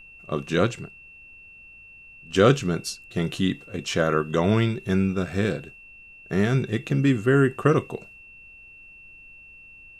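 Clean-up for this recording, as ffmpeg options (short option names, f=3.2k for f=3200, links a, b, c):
-af "bandreject=f=2.7k:w=30,agate=range=-21dB:threshold=-40dB"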